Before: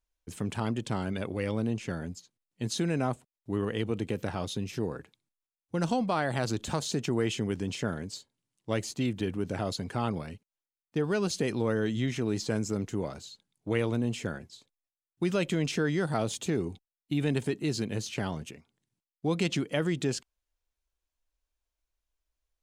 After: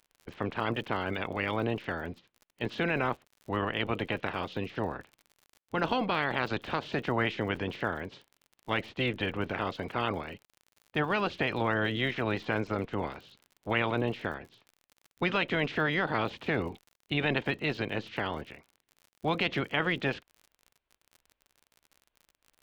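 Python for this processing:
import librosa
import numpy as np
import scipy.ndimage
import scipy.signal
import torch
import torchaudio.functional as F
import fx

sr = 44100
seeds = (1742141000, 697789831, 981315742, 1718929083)

y = fx.spec_clip(x, sr, under_db=19)
y = scipy.signal.sosfilt(scipy.signal.butter(4, 3300.0, 'lowpass', fs=sr, output='sos'), y)
y = fx.dmg_crackle(y, sr, seeds[0], per_s=50.0, level_db=-43.0)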